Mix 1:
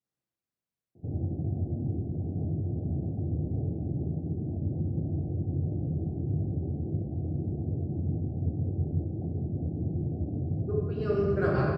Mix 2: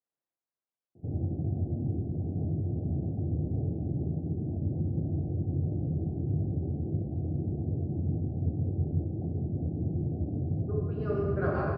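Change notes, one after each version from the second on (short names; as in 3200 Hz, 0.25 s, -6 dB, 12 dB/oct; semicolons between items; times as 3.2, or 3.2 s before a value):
speech: add band-pass 850 Hz, Q 0.79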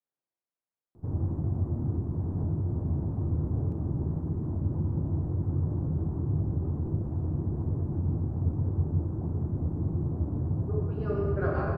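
background: remove steep low-pass 780 Hz 96 dB/oct; master: remove HPF 86 Hz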